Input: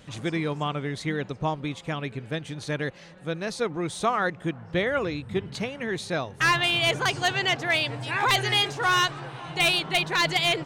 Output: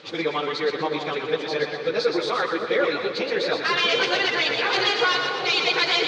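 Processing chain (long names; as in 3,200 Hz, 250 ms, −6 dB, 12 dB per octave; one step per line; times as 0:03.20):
stylus tracing distortion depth 0.043 ms
in parallel at −2 dB: compressor whose output falls as the input rises −27 dBFS, ratio −0.5
on the sum: time stretch by phase vocoder 0.57×
loudspeaker in its box 450–4,800 Hz, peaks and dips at 470 Hz +7 dB, 670 Hz −7 dB, 1,000 Hz −5 dB, 1,800 Hz −5 dB, 2,900 Hz −4 dB, 4,500 Hz +5 dB
echo with a time of its own for lows and highs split 830 Hz, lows 653 ms, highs 121 ms, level −5 dB
on a send at −11 dB: convolution reverb RT60 5.4 s, pre-delay 41 ms
on the sum: level +5 dB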